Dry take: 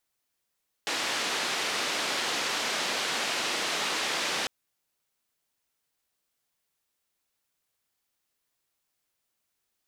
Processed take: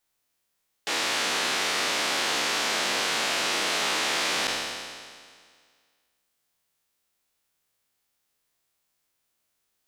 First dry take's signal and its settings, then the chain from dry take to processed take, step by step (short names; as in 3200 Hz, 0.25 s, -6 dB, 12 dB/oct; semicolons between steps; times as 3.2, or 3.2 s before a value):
noise band 260–4400 Hz, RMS -30 dBFS 3.60 s
spectral trails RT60 1.93 s